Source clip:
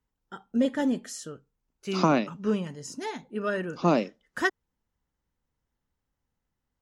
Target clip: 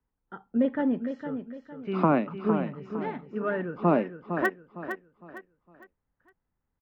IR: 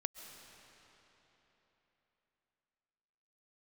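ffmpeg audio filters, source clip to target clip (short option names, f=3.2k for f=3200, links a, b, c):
-filter_complex "[0:a]acrossover=split=140|2400[a][b][c];[c]acrusher=bits=3:mix=0:aa=0.000001[d];[a][b][d]amix=inputs=3:normalize=0,aecho=1:1:458|916|1374|1832:0.376|0.132|0.046|0.0161"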